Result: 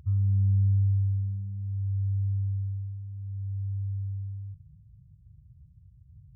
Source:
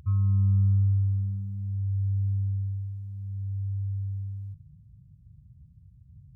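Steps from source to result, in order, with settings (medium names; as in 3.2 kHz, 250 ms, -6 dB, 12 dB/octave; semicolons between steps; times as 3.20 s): resonances exaggerated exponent 1.5; trim -1 dB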